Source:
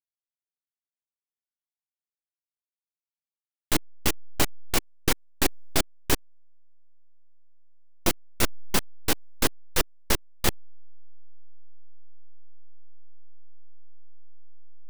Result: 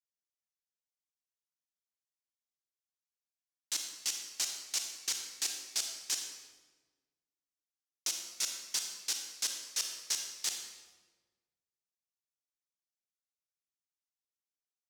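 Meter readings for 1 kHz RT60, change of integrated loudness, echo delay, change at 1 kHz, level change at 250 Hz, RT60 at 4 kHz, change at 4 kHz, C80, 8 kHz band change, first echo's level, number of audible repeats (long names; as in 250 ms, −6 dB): 1.2 s, −6.5 dB, no echo audible, −20.0 dB, −31.0 dB, 0.95 s, −4.0 dB, 6.0 dB, −1.5 dB, no echo audible, no echo audible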